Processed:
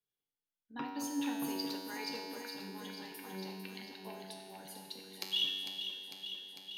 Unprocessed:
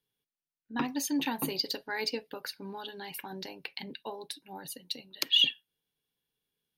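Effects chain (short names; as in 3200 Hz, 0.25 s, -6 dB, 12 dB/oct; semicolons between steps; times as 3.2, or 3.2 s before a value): resonator 95 Hz, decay 1.8 s, mix 90%; echo with dull and thin repeats by turns 0.225 s, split 1100 Hz, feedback 85%, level -7 dB; gain +6.5 dB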